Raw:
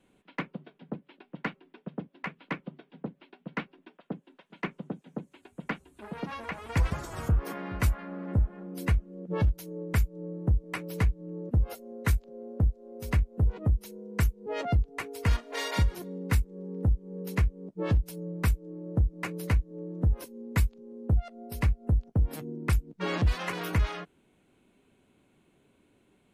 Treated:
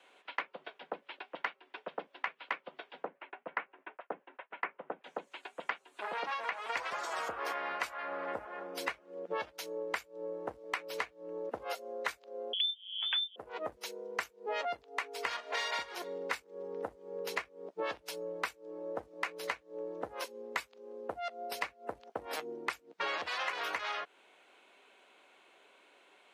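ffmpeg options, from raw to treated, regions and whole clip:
-filter_complex "[0:a]asettb=1/sr,asplit=3[a][b][c];[a]atrim=end=3.054[d];[b]atrim=start=3.05:end=5.04,asetpts=PTS-STARTPTS,afade=t=in:d=0.004:c=qsin,afade=t=out:st=1.986:d=0.004:c=qsin,agate=range=-33dB:threshold=-59dB:ratio=3:release=100:detection=peak,lowpass=f=2.3k:w=0.5412,lowpass=f=2.3k:w=1.3066,acompressor=mode=upward:threshold=-51dB:ratio=2.5:attack=3.2:release=140:knee=2.83:detection=peak[e];[c]atrim=start=5.036[f];[d][e]acrossfade=d=0.004:c1=hsin:c2=qsin[g];[g][f]acrossfade=d=0.004:c1=qsin:c2=hsin,asettb=1/sr,asplit=3[h][i][j];[h]atrim=end=12.534[k];[i]atrim=start=12.53:end=13.36,asetpts=PTS-STARTPTS,afade=t=in:d=0.004:c=qsin,afade=t=out:st=0.826:d=0.004:c=qsin,lowpass=f=3.1k:t=q:w=0.5098,lowpass=f=3.1k:t=q:w=0.6013,lowpass=f=3.1k:t=q:w=0.9,lowpass=f=3.1k:t=q:w=2.563,afreqshift=-3600,asplit=2[l][m];[m]adelay=25,volume=-13dB[n];[l][n]amix=inputs=2:normalize=0,atrim=end_sample=36603[o];[j]atrim=start=13.356[p];[k][o]acrossfade=d=0.004:c1=hsin:c2=qsin[q];[q][p]acrossfade=d=0.004:c1=qsin:c2=hsin,highpass=320,acrossover=split=520 6300:gain=0.0708 1 0.178[r][s][t];[r][s][t]amix=inputs=3:normalize=0,acompressor=threshold=-45dB:ratio=5,volume=11dB"

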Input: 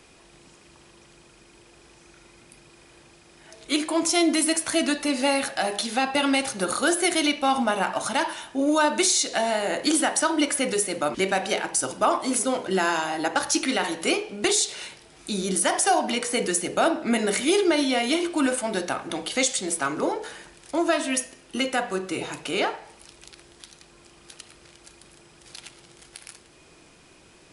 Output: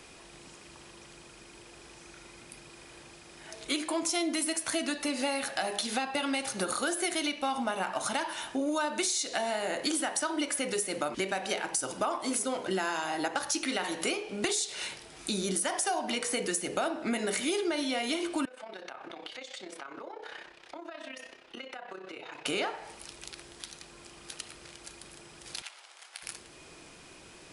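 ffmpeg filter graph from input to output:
-filter_complex "[0:a]asettb=1/sr,asplit=3[a][b][c];[a]atrim=end=18.454[d];[b]atrim=start=18.45:end=22.46,asetpts=PTS-STARTPTS,afade=t=in:d=0.004:c=qsin,afade=t=out:st=4.006:d=0.004:c=qsin,acrossover=split=340 4500:gain=0.224 1 0.0708[e][f][g];[e][f][g]amix=inputs=3:normalize=0,acompressor=threshold=-38dB:ratio=12:attack=3.2:release=140:knee=1:detection=peak,tremolo=f=32:d=0.667[h];[c]atrim=start=22.456[i];[d][h]acrossfade=d=0.004:c1=hsin:c2=qsin[j];[j][i]acrossfade=d=0.004:c1=qsin:c2=hsin,asettb=1/sr,asplit=3[k][l][m];[k]atrim=end=25.624[n];[l]atrim=start=25.62:end=26.23,asetpts=PTS-STARTPTS,afade=t=in:d=0.004:c=qsin,afade=t=out:st=0.606:d=0.004:c=qsin,highpass=f=680:w=0.5412,highpass=f=680:w=1.3066,highshelf=f=5k:g=-8[o];[m]atrim=start=26.226[p];[n][o]acrossfade=d=0.004:c1=hsin:c2=qsin[q];[q][p]acrossfade=d=0.004:c1=qsin:c2=hsin,lowshelf=f=440:g=-3,acompressor=threshold=-32dB:ratio=4,volume=2.5dB"

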